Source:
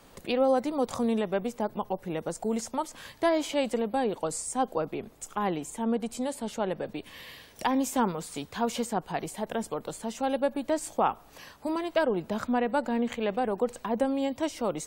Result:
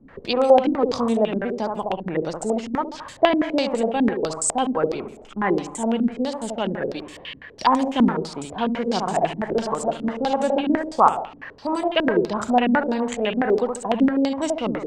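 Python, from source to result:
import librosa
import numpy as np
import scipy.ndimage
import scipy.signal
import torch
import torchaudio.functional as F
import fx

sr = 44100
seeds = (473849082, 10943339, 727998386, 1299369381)

y = fx.reverse_delay(x, sr, ms=175, wet_db=-4.0, at=(8.68, 10.75))
y = fx.room_flutter(y, sr, wall_m=12.0, rt60_s=0.61)
y = fx.filter_held_lowpass(y, sr, hz=12.0, low_hz=260.0, high_hz=7800.0)
y = F.gain(torch.from_numpy(y), 3.5).numpy()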